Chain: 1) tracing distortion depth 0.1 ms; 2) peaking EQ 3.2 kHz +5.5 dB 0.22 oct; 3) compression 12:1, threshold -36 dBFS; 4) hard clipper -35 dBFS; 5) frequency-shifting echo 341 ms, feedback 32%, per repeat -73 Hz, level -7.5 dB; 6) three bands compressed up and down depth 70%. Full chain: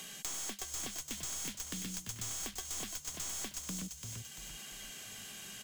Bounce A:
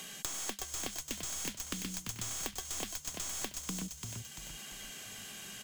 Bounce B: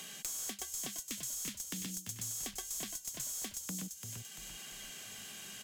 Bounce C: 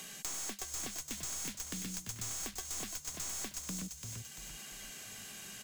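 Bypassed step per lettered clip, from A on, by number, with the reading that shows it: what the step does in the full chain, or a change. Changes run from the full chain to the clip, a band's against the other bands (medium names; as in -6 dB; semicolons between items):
4, distortion -11 dB; 1, 8 kHz band +2.0 dB; 2, 4 kHz band -1.5 dB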